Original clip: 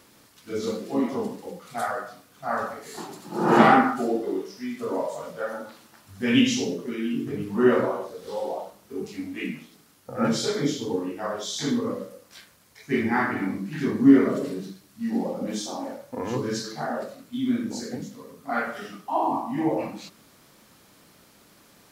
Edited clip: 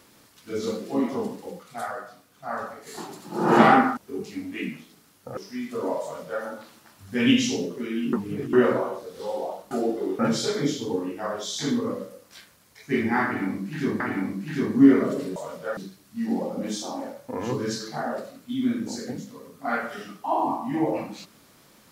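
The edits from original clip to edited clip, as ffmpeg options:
-filter_complex "[0:a]asplit=12[s0][s1][s2][s3][s4][s5][s6][s7][s8][s9][s10][s11];[s0]atrim=end=1.632[s12];[s1]atrim=start=1.628:end=2.872,asetpts=PTS-STARTPTS,volume=0.631[s13];[s2]atrim=start=2.868:end=3.972[s14];[s3]atrim=start=8.788:end=10.192[s15];[s4]atrim=start=4.448:end=7.212[s16];[s5]atrim=start=7.208:end=7.612,asetpts=PTS-STARTPTS,areverse[s17];[s6]atrim=start=7.608:end=8.792[s18];[s7]atrim=start=3.968:end=4.452[s19];[s8]atrim=start=10.188:end=14.002[s20];[s9]atrim=start=13.248:end=14.612[s21];[s10]atrim=start=5.098:end=5.512[s22];[s11]atrim=start=14.608[s23];[s12][s13]acrossfade=d=0.004:c1=hsin:c2=hsin[s24];[s24][s14]acrossfade=d=0.004:c1=hsin:c2=hsin[s25];[s25][s15]acrossfade=d=0.004:c1=hsin:c2=hsin[s26];[s26][s16]acrossfade=d=0.004:c1=hsin:c2=hsin[s27];[s27][s17]acrossfade=d=0.004:c1=hsin:c2=hsin[s28];[s28][s18]acrossfade=d=0.004:c1=hsin:c2=hsin[s29];[s29][s19]acrossfade=d=0.004:c1=hsin:c2=hsin[s30];[s30][s20]acrossfade=d=0.004:c1=hsin:c2=hsin[s31];[s31][s21]acrossfade=d=0.004:c1=hsin:c2=hsin[s32];[s32][s22]acrossfade=d=0.004:c1=hsin:c2=hsin[s33];[s33][s23]acrossfade=d=0.004:c1=hsin:c2=hsin"

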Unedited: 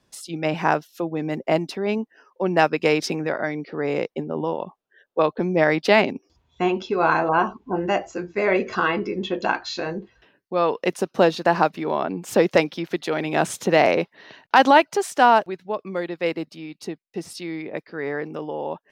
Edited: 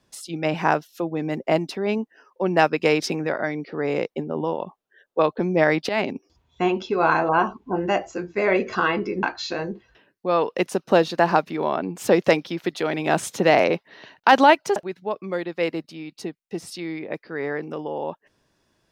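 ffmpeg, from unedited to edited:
-filter_complex "[0:a]asplit=4[s0][s1][s2][s3];[s0]atrim=end=5.89,asetpts=PTS-STARTPTS,afade=t=out:st=5.886:d=0.004:c=hsin:silence=0.177828[s4];[s1]atrim=start=5.89:end=9.232,asetpts=PTS-STARTPTS,afade=t=in:d=0.25:silence=0.177828[s5];[s2]atrim=start=9.498:end=15.032[s6];[s3]atrim=start=15.388[s7];[s4][s5]concat=n=2:v=0:a=1[s8];[s8][s6]acrossfade=d=0.004:c1=hsin:c2=hsin[s9];[s9][s7]acrossfade=d=0.004:c1=hsin:c2=hsin"

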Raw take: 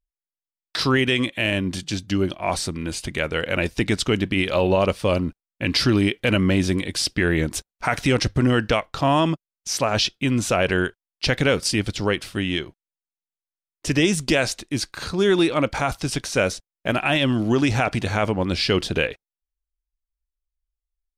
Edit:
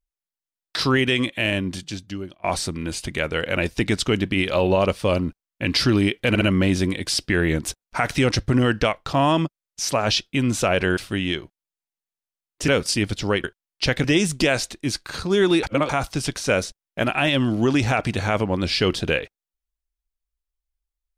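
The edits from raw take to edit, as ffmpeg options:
-filter_complex "[0:a]asplit=10[s0][s1][s2][s3][s4][s5][s6][s7][s8][s9];[s0]atrim=end=2.44,asetpts=PTS-STARTPTS,afade=t=out:st=1.5:d=0.94:silence=0.0707946[s10];[s1]atrim=start=2.44:end=6.352,asetpts=PTS-STARTPTS,afade=t=in:d=0.004:c=hsin:silence=0.0707946[s11];[s2]atrim=start=6.288:end=6.352[s12];[s3]atrim=start=6.288:end=10.852[s13];[s4]atrim=start=12.208:end=13.922[s14];[s5]atrim=start=11.448:end=12.212[s15];[s6]atrim=start=10.848:end=11.452[s16];[s7]atrim=start=13.918:end=15.512[s17];[s8]atrim=start=15.508:end=15.772,asetpts=PTS-STARTPTS,areverse[s18];[s9]atrim=start=15.768[s19];[s10][s11]concat=n=2:v=0:a=1[s20];[s20][s12]acrossfade=d=0.004:c1=hsin:c2=hsin[s21];[s21][s13]acrossfade=d=0.004:c1=hsin:c2=hsin[s22];[s22][s14]acrossfade=d=0.004:c1=hsin:c2=hsin[s23];[s23][s15]acrossfade=d=0.004:c1=hsin:c2=hsin[s24];[s24][s16]acrossfade=d=0.004:c1=hsin:c2=hsin[s25];[s25][s17]acrossfade=d=0.004:c1=hsin:c2=hsin[s26];[s26][s18]acrossfade=d=0.004:c1=hsin:c2=hsin[s27];[s27][s19]acrossfade=d=0.004:c1=hsin:c2=hsin"

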